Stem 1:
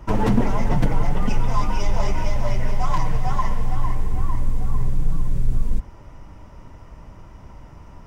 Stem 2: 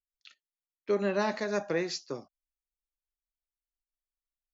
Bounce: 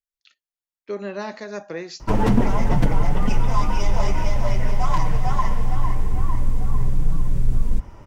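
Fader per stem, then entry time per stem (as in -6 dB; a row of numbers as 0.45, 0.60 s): +1.0, -1.5 dB; 2.00, 0.00 s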